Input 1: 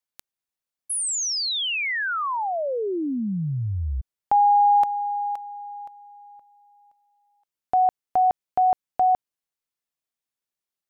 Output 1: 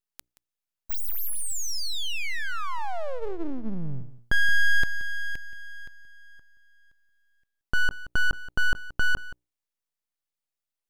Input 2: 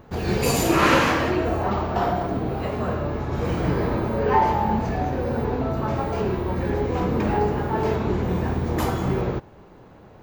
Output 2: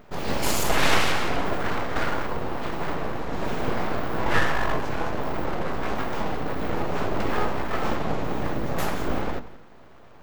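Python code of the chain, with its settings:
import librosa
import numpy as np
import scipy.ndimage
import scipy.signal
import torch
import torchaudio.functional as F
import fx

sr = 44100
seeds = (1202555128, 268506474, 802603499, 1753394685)

y = fx.hum_notches(x, sr, base_hz=60, count=4)
y = np.abs(y)
y = y + 10.0 ** (-16.5 / 20.0) * np.pad(y, (int(176 * sr / 1000.0), 0))[:len(y)]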